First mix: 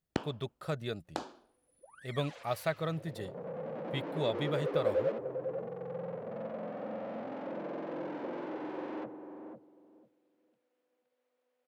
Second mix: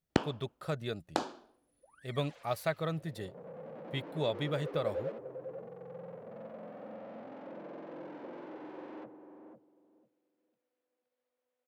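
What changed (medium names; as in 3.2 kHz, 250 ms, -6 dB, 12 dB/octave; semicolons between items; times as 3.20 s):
first sound +5.5 dB; second sound -6.5 dB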